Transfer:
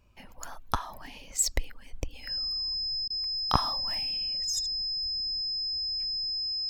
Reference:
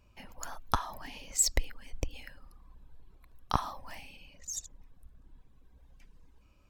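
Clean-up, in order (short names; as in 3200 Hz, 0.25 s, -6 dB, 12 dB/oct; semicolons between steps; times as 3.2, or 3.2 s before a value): notch 5100 Hz, Q 30; interpolate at 3.08, 21 ms; gain 0 dB, from 2.23 s -4 dB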